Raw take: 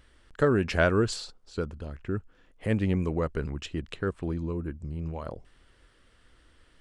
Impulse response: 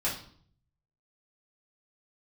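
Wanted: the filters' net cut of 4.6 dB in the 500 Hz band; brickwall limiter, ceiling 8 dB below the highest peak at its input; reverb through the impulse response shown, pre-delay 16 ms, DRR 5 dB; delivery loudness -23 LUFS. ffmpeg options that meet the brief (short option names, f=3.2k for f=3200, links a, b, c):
-filter_complex "[0:a]equalizer=f=500:t=o:g=-6,alimiter=limit=-19.5dB:level=0:latency=1,asplit=2[a][b];[1:a]atrim=start_sample=2205,adelay=16[c];[b][c]afir=irnorm=-1:irlink=0,volume=-12dB[d];[a][d]amix=inputs=2:normalize=0,volume=9dB"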